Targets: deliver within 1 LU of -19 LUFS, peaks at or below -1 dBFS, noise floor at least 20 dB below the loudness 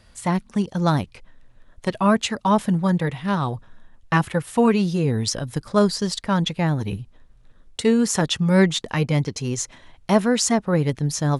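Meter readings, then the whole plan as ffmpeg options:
loudness -21.5 LUFS; peak -4.0 dBFS; loudness target -19.0 LUFS
-> -af "volume=2.5dB"

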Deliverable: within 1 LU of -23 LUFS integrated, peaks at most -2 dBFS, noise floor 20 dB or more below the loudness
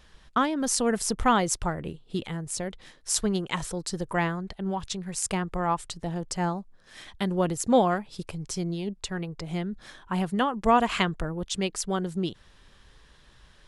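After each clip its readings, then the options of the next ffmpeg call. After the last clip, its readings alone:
loudness -28.5 LUFS; peak -5.5 dBFS; loudness target -23.0 LUFS
-> -af "volume=5.5dB,alimiter=limit=-2dB:level=0:latency=1"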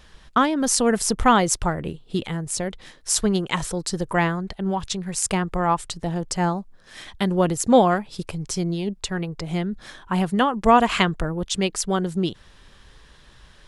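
loudness -23.0 LUFS; peak -2.0 dBFS; noise floor -51 dBFS

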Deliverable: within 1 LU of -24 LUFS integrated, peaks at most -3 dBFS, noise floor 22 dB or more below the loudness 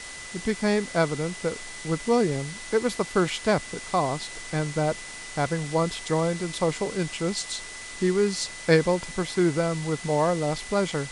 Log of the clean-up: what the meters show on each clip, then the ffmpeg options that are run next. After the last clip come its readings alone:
steady tone 2000 Hz; tone level -41 dBFS; noise floor -39 dBFS; noise floor target -49 dBFS; loudness -26.5 LUFS; peak -7.5 dBFS; loudness target -24.0 LUFS
-> -af "bandreject=f=2k:w=30"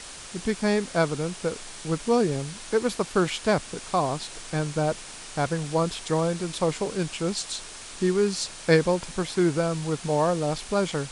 steady tone none; noise floor -41 dBFS; noise floor target -49 dBFS
-> -af "afftdn=nr=8:nf=-41"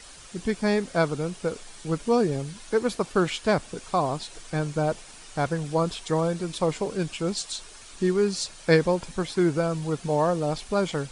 noise floor -46 dBFS; noise floor target -49 dBFS
-> -af "afftdn=nr=6:nf=-46"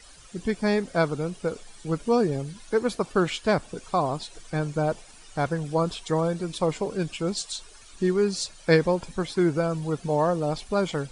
noise floor -49 dBFS; loudness -26.5 LUFS; peak -8.0 dBFS; loudness target -24.0 LUFS
-> -af "volume=2.5dB"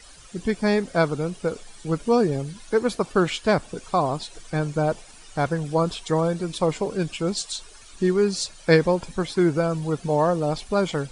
loudness -24.0 LUFS; peak -5.5 dBFS; noise floor -47 dBFS

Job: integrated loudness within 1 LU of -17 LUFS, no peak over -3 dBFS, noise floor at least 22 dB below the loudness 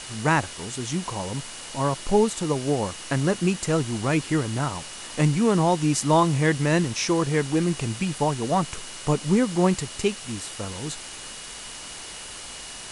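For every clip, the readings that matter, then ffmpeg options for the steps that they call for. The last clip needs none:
steady tone 2900 Hz; tone level -46 dBFS; noise floor -39 dBFS; noise floor target -47 dBFS; loudness -24.5 LUFS; peak -6.5 dBFS; loudness target -17.0 LUFS
-> -af "bandreject=f=2.9k:w=30"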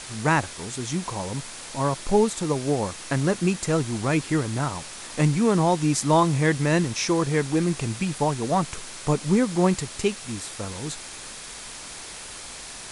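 steady tone none; noise floor -39 dBFS; noise floor target -47 dBFS
-> -af "afftdn=nr=8:nf=-39"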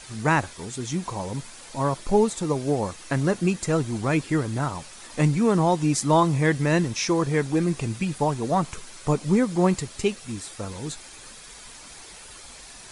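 noise floor -44 dBFS; noise floor target -47 dBFS
-> -af "afftdn=nr=6:nf=-44"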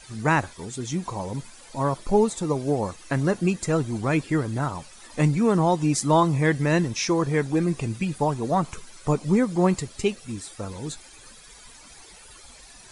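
noise floor -48 dBFS; loudness -24.5 LUFS; peak -7.0 dBFS; loudness target -17.0 LUFS
-> -af "volume=7.5dB,alimiter=limit=-3dB:level=0:latency=1"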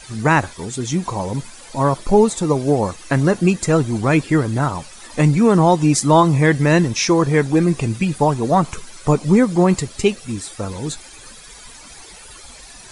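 loudness -17.5 LUFS; peak -3.0 dBFS; noise floor -41 dBFS

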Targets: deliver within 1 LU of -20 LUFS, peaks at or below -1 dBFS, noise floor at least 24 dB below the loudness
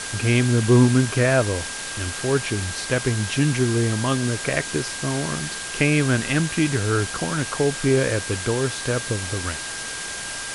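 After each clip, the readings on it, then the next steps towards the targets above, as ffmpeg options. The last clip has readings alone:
steady tone 1600 Hz; tone level -35 dBFS; noise floor -31 dBFS; noise floor target -46 dBFS; loudness -22.0 LUFS; peak -5.0 dBFS; loudness target -20.0 LUFS
-> -af "bandreject=f=1.6k:w=30"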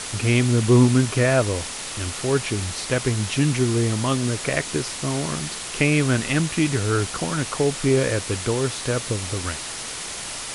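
steady tone none; noise floor -32 dBFS; noise floor target -46 dBFS
-> -af "afftdn=nr=14:nf=-32"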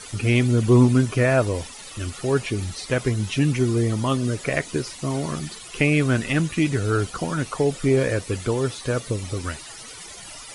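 noise floor -40 dBFS; noise floor target -47 dBFS
-> -af "afftdn=nr=7:nf=-40"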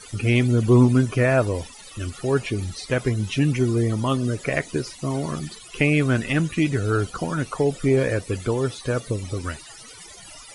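noise floor -43 dBFS; noise floor target -47 dBFS
-> -af "afftdn=nr=6:nf=-43"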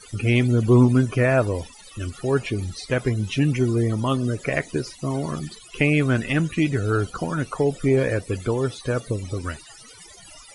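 noise floor -46 dBFS; noise floor target -47 dBFS; loudness -22.5 LUFS; peak -5.5 dBFS; loudness target -20.0 LUFS
-> -af "volume=2.5dB"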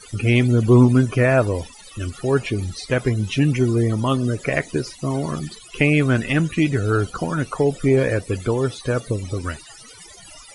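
loudness -20.0 LUFS; peak -3.0 dBFS; noise floor -44 dBFS

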